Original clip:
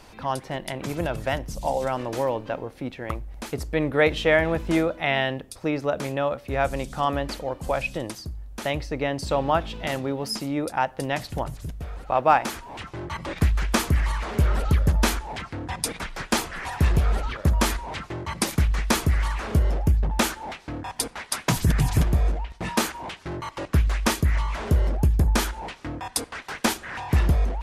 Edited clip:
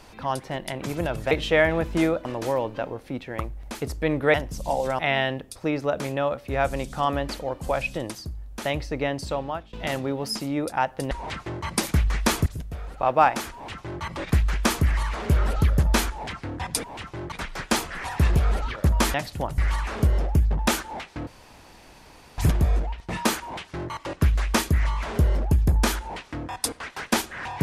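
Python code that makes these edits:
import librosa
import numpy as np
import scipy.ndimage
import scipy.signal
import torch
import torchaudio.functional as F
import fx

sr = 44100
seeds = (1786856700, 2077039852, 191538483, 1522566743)

y = fx.edit(x, sr, fx.swap(start_s=1.31, length_s=0.65, other_s=4.05, other_length_s=0.94),
    fx.fade_out_to(start_s=9.07, length_s=0.66, floor_db=-23.0),
    fx.swap(start_s=11.11, length_s=0.44, other_s=17.75, other_length_s=1.35),
    fx.duplicate(start_s=12.64, length_s=0.48, to_s=15.93),
    fx.room_tone_fill(start_s=20.79, length_s=1.11), tone=tone)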